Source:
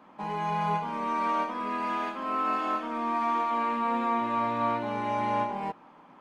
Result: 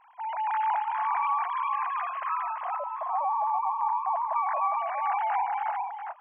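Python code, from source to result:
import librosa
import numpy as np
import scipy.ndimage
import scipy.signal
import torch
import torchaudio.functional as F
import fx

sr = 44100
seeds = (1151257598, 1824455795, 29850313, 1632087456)

y = fx.sine_speech(x, sr)
y = fx.curve_eq(y, sr, hz=(310.0, 520.0, 1000.0, 1400.0), db=(0, 11, 0, -16), at=(2.35, 4.36))
y = y + 10.0 ** (-4.0 / 20.0) * np.pad(y, (int(408 * sr / 1000.0), 0))[:len(y)]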